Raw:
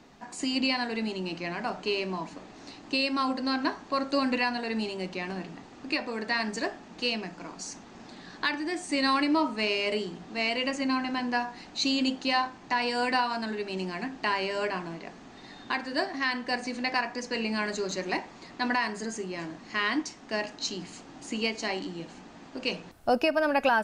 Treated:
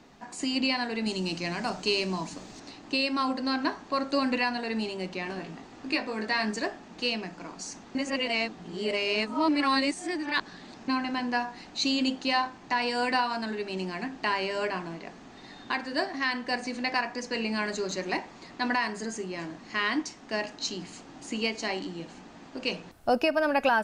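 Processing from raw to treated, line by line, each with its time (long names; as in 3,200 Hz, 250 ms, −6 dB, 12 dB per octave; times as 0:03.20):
0:01.06–0:02.60: bass and treble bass +5 dB, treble +13 dB
0:05.24–0:06.56: double-tracking delay 19 ms −5.5 dB
0:07.95–0:10.88: reverse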